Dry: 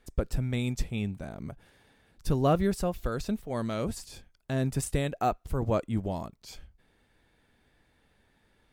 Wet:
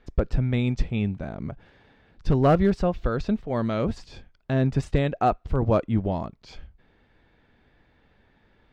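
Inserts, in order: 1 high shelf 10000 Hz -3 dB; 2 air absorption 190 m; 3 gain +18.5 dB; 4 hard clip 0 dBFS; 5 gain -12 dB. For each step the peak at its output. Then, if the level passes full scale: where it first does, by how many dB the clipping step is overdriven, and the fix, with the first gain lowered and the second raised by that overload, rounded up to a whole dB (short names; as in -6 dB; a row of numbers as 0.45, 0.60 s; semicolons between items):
-13.0, -13.5, +5.0, 0.0, -12.0 dBFS; step 3, 5.0 dB; step 3 +13.5 dB, step 5 -7 dB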